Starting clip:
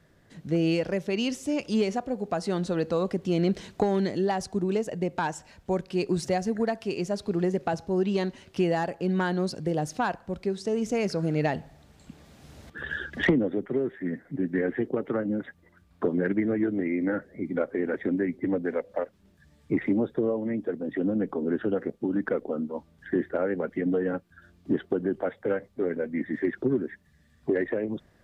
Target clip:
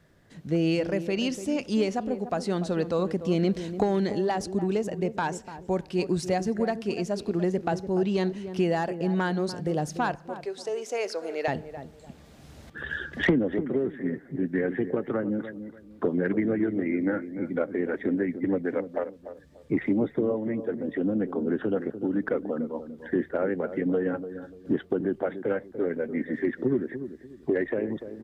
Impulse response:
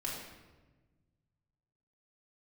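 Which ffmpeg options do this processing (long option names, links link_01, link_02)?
-filter_complex "[0:a]asettb=1/sr,asplit=3[link_01][link_02][link_03];[link_01]atrim=end=10.194[link_04];[link_02]atrim=start=10.19:end=11.48,asetpts=PTS-STARTPTS,afade=type=in:duration=0.004:curve=qsin,afade=type=out:start_time=1.286:duration=0.004:curve=qsin,highpass=frequency=420:width=0.5412,highpass=frequency=420:width=1.3066[link_05];[link_03]atrim=start=11.476[link_06];[link_04][link_05]acrossfade=duration=0.004:curve1=hsin:curve2=qsin[link_07];[link_07][link_06]acrossfade=duration=0.004:curve1=qsin:curve2=hsin,asplit=2[link_08][link_09];[link_09]adelay=293,lowpass=frequency=820:poles=1,volume=-10dB,asplit=2[link_10][link_11];[link_11]adelay=293,lowpass=frequency=820:poles=1,volume=0.3,asplit=2[link_12][link_13];[link_13]adelay=293,lowpass=frequency=820:poles=1,volume=0.3[link_14];[link_10][link_12][link_14]amix=inputs=3:normalize=0[link_15];[link_08][link_15]amix=inputs=2:normalize=0"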